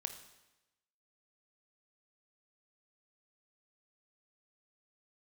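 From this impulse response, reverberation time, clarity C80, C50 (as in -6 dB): 1.0 s, 11.5 dB, 9.5 dB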